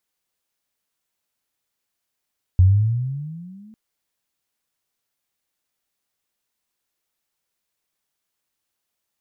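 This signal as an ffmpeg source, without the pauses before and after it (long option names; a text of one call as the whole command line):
ffmpeg -f lavfi -i "aevalsrc='pow(10,(-8-34.5*t/1.15)/20)*sin(2*PI*88.8*1.15/(16*log(2)/12)*(exp(16*log(2)/12*t/1.15)-1))':duration=1.15:sample_rate=44100" out.wav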